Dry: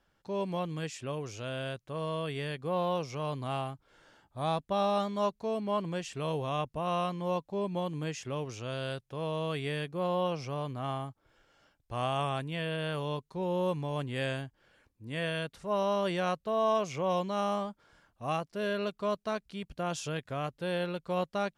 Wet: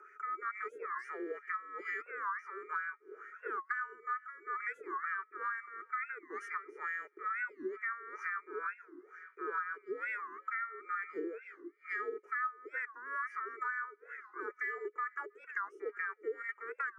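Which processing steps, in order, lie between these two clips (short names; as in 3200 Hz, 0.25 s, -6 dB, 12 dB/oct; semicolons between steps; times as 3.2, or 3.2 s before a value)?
band inversion scrambler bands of 2000 Hz; three-band isolator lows -19 dB, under 360 Hz, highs -20 dB, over 2300 Hz; small resonant body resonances 330/690/1000/2300 Hz, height 17 dB, ringing for 75 ms; on a send: narrowing echo 0.405 s, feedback 74%, band-pass 2800 Hz, level -20 dB; on the sum: upward compressor, threshold -50 dBFS; EQ curve 130 Hz 0 dB, 290 Hz +11 dB, 650 Hz -29 dB, 1000 Hz 0 dB, 3100 Hz -23 dB, 4600 Hz +13 dB; varispeed +27%; wah 2.2 Hz 340–1900 Hz, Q 4.8; compressor 8:1, threshold -52 dBFS, peak gain reduction 27.5 dB; record warp 45 rpm, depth 250 cents; gain +16.5 dB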